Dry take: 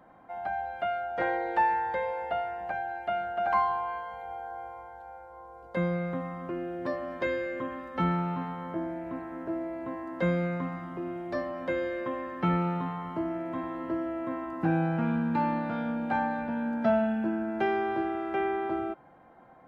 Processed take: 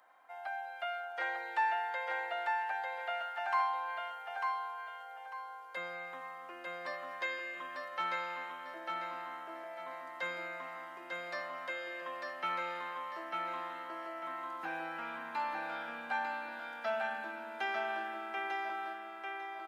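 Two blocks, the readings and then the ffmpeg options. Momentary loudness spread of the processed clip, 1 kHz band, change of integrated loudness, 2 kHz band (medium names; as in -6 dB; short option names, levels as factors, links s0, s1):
10 LU, -5.5 dB, -7.5 dB, -0.5 dB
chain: -filter_complex "[0:a]highpass=920,highshelf=f=2800:g=9.5,asplit=2[s0][s1];[s1]aecho=0:1:897|1794|2691|3588:0.668|0.201|0.0602|0.018[s2];[s0][s2]amix=inputs=2:normalize=0,volume=0.596"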